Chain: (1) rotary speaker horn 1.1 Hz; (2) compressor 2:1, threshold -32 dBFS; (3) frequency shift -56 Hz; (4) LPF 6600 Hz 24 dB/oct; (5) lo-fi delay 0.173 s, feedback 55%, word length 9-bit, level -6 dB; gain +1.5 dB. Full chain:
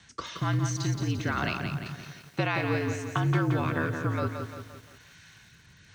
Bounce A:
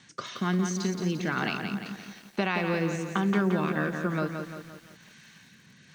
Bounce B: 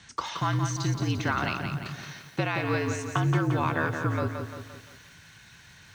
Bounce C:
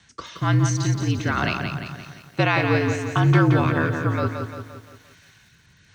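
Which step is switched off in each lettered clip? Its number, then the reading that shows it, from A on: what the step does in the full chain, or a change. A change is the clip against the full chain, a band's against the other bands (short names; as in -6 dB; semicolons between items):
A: 3, 125 Hz band -5.0 dB; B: 1, 1 kHz band +2.0 dB; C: 2, mean gain reduction 4.5 dB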